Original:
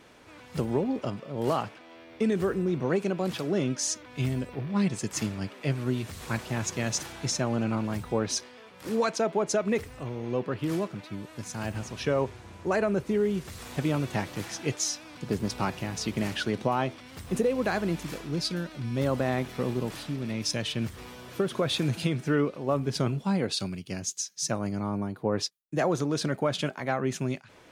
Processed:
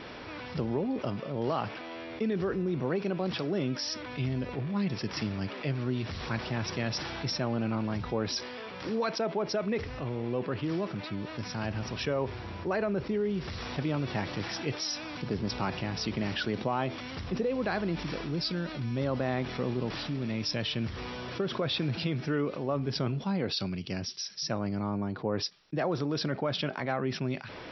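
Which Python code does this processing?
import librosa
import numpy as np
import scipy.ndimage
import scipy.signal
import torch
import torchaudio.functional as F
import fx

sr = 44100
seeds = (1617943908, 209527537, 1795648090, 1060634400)

y = fx.brickwall_lowpass(x, sr, high_hz=5800.0)
y = fx.env_flatten(y, sr, amount_pct=50)
y = y * 10.0 ** (-5.5 / 20.0)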